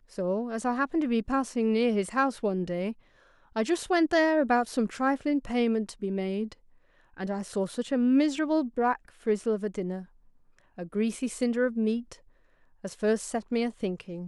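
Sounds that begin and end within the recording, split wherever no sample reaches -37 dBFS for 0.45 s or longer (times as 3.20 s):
3.56–6.52 s
7.18–10.02 s
10.78–12.13 s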